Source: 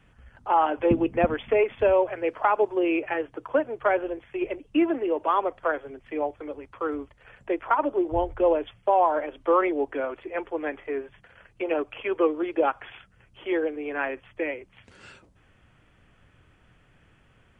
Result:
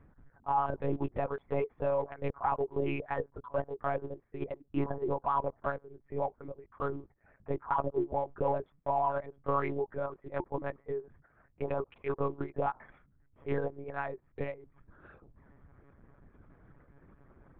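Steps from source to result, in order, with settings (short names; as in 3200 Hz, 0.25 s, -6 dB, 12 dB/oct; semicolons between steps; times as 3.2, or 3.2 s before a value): Wiener smoothing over 15 samples; reverb removal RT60 1 s; in parallel at -11 dB: short-mantissa float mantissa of 2-bit; on the sum: limiter -17 dBFS, peak gain reduction 10 dB; monotone LPC vocoder at 8 kHz 140 Hz; high shelf 2700 Hz -11 dB; reverse; upward compressor, threshold -40 dBFS; reverse; dynamic EQ 990 Hz, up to +7 dB, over -43 dBFS, Q 1.8; gain -7 dB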